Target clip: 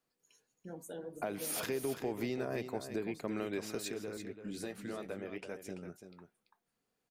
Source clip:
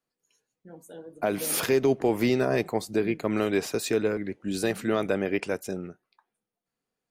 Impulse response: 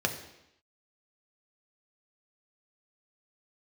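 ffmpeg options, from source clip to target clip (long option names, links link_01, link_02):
-filter_complex "[0:a]acompressor=threshold=-43dB:ratio=2.5,asettb=1/sr,asplit=3[link_01][link_02][link_03];[link_01]atrim=end=3.884[link_04];[link_02]atrim=start=3.88:end=5.88,asetpts=PTS-STARTPTS,afade=type=in:duration=0.004:curve=qsin,afade=type=out:start_time=1.996:duration=0.004:curve=qsin,flanger=delay=4.4:depth=8.4:regen=-48:speed=1.8:shape=sinusoidal[link_05];[link_03]atrim=start=5.876[link_06];[link_04][link_05]acrossfade=duration=0.004:curve1=hsin:curve2=qsin[link_07];[link_07][link_06]acrossfade=duration=0.004:curve1=qsin:curve2=hsin,aecho=1:1:337:0.335,volume=1.5dB"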